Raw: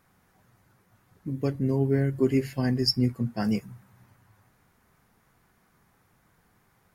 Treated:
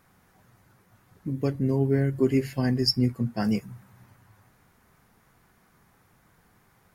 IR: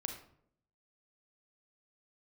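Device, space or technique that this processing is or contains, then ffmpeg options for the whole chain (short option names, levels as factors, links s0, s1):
parallel compression: -filter_complex "[0:a]asplit=2[s0][s1];[s1]acompressor=threshold=0.0178:ratio=6,volume=0.447[s2];[s0][s2]amix=inputs=2:normalize=0"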